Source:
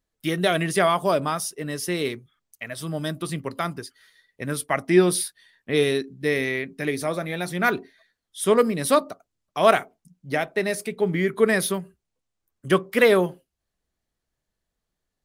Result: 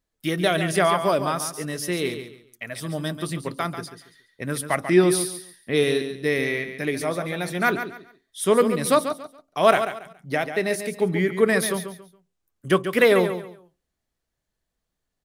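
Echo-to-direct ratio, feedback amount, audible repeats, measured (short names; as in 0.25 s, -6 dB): -9.0 dB, 26%, 3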